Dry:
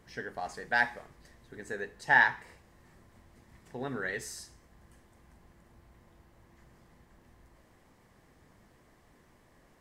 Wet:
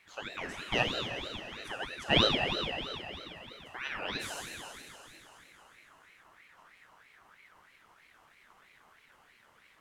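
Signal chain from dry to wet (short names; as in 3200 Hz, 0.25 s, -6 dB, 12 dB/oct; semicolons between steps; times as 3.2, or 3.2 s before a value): Schroeder reverb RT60 3.4 s, combs from 30 ms, DRR 0.5 dB; ring modulator with a swept carrier 1600 Hz, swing 40%, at 3.1 Hz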